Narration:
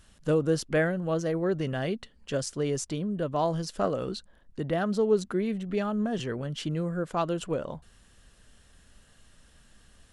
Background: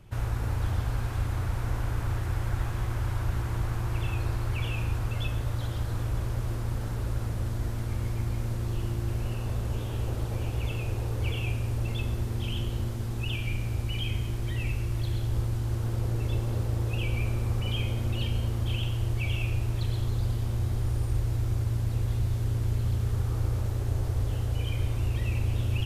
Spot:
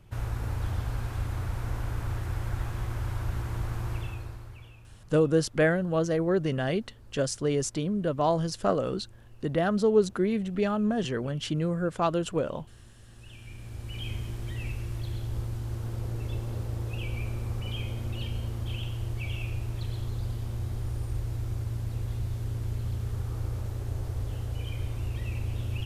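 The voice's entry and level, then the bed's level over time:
4.85 s, +2.0 dB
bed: 3.92 s -2.5 dB
4.85 s -23 dB
13 s -23 dB
14.06 s -4.5 dB

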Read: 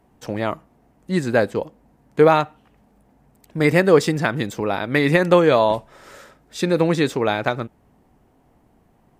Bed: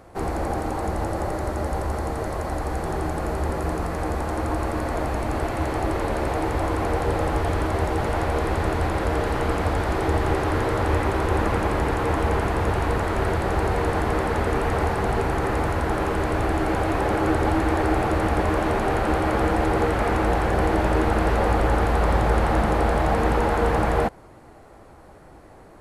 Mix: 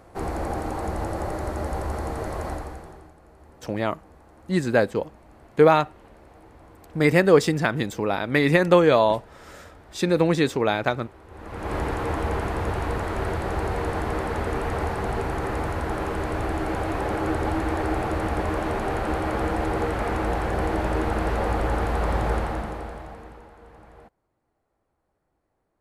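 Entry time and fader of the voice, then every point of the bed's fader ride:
3.40 s, -2.0 dB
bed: 2.5 s -2.5 dB
3.17 s -26 dB
11.26 s -26 dB
11.74 s -4 dB
22.33 s -4 dB
23.55 s -28 dB

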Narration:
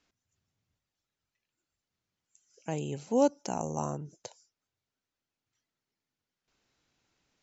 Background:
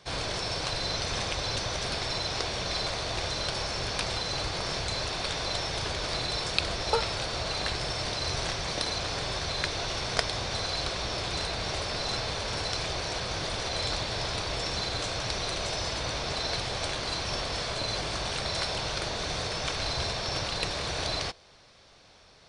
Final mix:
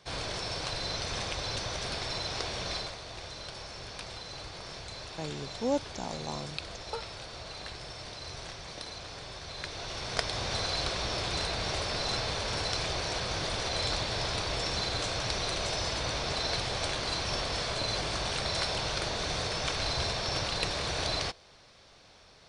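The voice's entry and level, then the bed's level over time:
2.50 s, -4.5 dB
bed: 2.74 s -3.5 dB
2.98 s -11 dB
9.41 s -11 dB
10.5 s -0.5 dB

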